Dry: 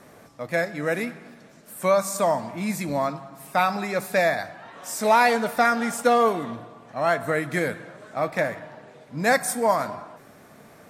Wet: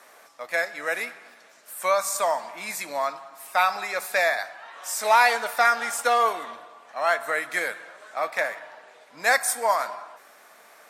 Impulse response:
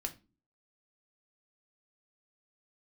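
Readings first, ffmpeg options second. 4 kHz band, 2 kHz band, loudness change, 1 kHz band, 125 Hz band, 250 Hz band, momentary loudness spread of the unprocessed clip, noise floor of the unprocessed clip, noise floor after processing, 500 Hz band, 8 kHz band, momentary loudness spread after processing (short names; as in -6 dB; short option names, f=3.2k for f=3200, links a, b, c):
+2.5 dB, +2.5 dB, -0.5 dB, 0.0 dB, under -20 dB, -18.0 dB, 18 LU, -50 dBFS, -53 dBFS, -4.5 dB, +2.5 dB, 16 LU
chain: -af "highpass=810,volume=2.5dB"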